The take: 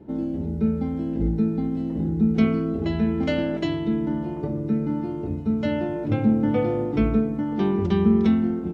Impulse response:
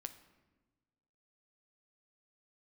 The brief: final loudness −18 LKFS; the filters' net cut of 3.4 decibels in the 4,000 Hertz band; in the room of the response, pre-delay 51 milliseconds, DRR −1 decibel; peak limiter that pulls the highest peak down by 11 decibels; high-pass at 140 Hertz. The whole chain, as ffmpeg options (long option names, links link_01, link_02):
-filter_complex "[0:a]highpass=140,equalizer=frequency=4000:width_type=o:gain=-5,alimiter=limit=-20dB:level=0:latency=1,asplit=2[link_01][link_02];[1:a]atrim=start_sample=2205,adelay=51[link_03];[link_02][link_03]afir=irnorm=-1:irlink=0,volume=5dB[link_04];[link_01][link_04]amix=inputs=2:normalize=0,volume=6dB"